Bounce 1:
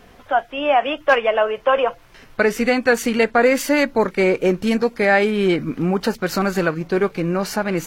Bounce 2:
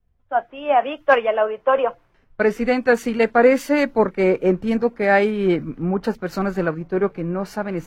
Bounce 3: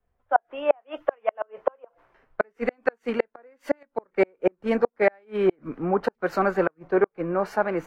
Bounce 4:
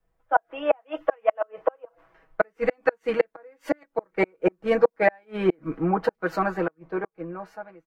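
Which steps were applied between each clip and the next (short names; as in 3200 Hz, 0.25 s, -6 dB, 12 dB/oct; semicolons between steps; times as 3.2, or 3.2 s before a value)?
high shelf 2400 Hz -11.5 dB; three-band expander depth 100%
flipped gate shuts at -9 dBFS, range -41 dB; three-band isolator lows -14 dB, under 370 Hz, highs -12 dB, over 2200 Hz; gain +4.5 dB
ending faded out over 2.08 s; comb 6.2 ms, depth 77%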